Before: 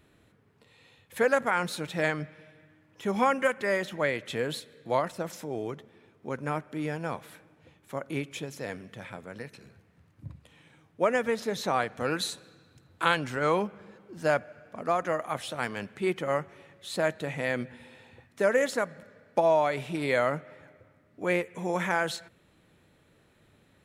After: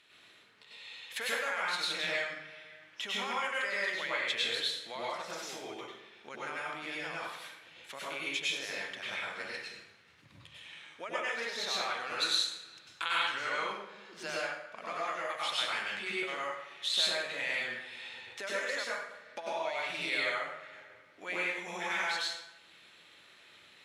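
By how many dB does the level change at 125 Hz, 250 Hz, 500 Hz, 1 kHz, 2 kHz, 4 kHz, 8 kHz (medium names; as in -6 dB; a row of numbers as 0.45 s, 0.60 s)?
-20.0 dB, -15.0 dB, -12.0 dB, -7.0 dB, -1.0 dB, +7.0 dB, 0.0 dB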